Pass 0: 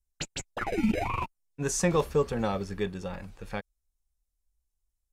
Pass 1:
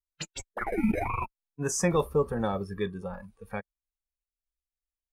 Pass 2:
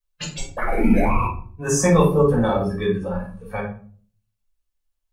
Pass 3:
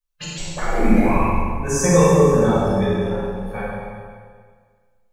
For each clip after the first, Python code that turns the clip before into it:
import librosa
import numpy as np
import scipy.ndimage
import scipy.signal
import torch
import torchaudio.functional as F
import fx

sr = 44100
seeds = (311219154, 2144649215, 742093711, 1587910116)

y1 = fx.noise_reduce_blind(x, sr, reduce_db=17)
y2 = fx.room_shoebox(y1, sr, seeds[0], volume_m3=370.0, walls='furnished', distance_m=5.6)
y3 = fx.echo_filtered(y2, sr, ms=218, feedback_pct=39, hz=830.0, wet_db=-9.5)
y3 = fx.rev_schroeder(y3, sr, rt60_s=1.7, comb_ms=32, drr_db=-3.0)
y3 = F.gain(torch.from_numpy(y3), -3.0).numpy()